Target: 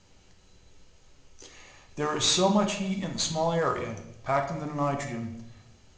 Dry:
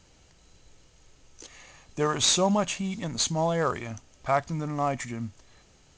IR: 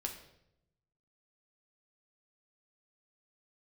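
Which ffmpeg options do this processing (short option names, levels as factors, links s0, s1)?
-filter_complex "[0:a]lowpass=7700[s0];[1:a]atrim=start_sample=2205[s1];[s0][s1]afir=irnorm=-1:irlink=0"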